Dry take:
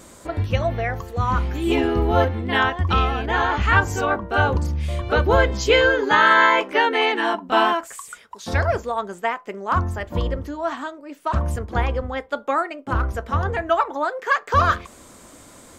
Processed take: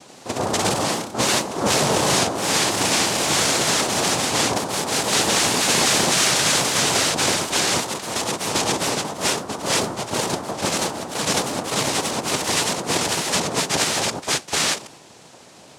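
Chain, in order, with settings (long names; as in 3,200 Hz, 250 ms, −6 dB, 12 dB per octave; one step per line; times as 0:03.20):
wrap-around overflow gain 14.5 dB
cochlear-implant simulation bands 2
delay with pitch and tempo change per echo 84 ms, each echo +1 semitone, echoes 3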